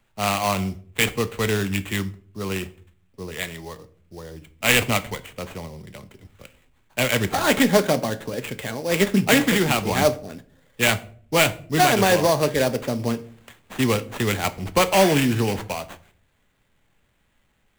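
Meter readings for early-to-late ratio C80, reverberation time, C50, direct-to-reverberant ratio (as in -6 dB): 22.5 dB, 0.50 s, 18.0 dB, 11.0 dB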